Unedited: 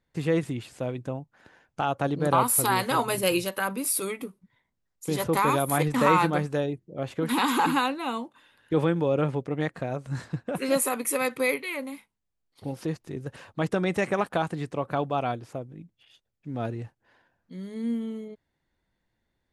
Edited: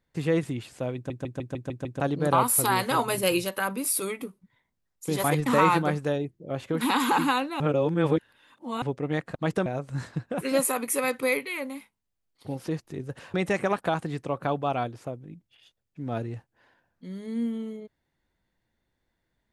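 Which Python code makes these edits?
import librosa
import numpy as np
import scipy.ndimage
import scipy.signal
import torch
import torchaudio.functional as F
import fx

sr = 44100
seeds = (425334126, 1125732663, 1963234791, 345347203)

y = fx.edit(x, sr, fx.stutter_over(start_s=0.95, slice_s=0.15, count=7),
    fx.cut(start_s=5.24, length_s=0.48),
    fx.reverse_span(start_s=8.08, length_s=1.22),
    fx.move(start_s=13.51, length_s=0.31, to_s=9.83), tone=tone)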